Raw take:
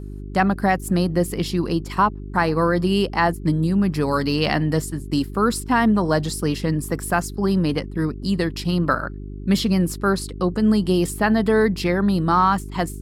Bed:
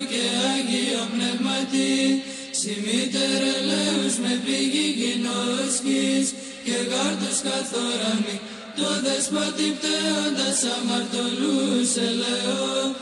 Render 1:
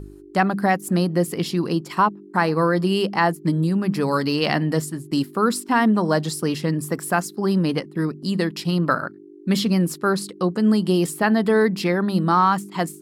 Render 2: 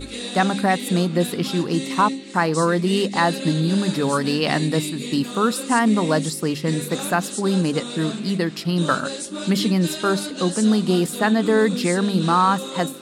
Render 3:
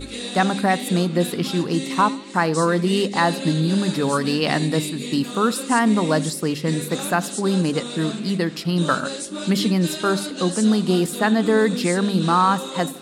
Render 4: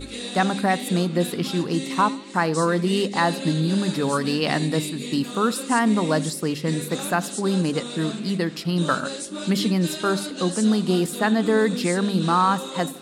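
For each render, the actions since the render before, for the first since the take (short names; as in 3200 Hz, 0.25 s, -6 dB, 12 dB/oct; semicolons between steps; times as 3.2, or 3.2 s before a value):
de-hum 50 Hz, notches 5
add bed -7 dB
tape echo 79 ms, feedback 52%, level -19.5 dB
gain -2 dB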